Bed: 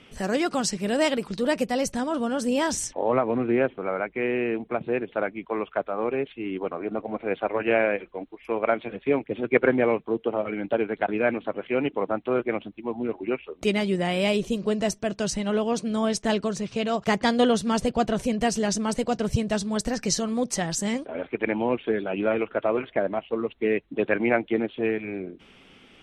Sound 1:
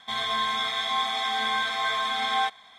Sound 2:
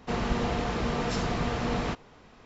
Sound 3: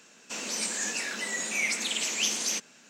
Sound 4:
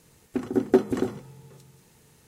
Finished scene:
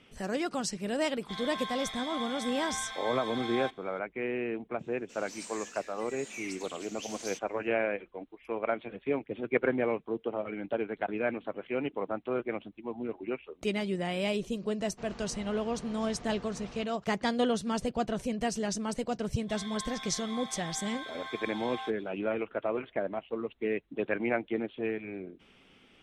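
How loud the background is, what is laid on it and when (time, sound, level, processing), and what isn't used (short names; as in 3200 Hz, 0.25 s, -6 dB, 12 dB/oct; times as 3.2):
bed -7.5 dB
1.21 add 1 -12 dB
4.79 add 3 -13 dB + rotary speaker horn 1.1 Hz
14.9 add 2 -18 dB
19.41 add 1 -16 dB
not used: 4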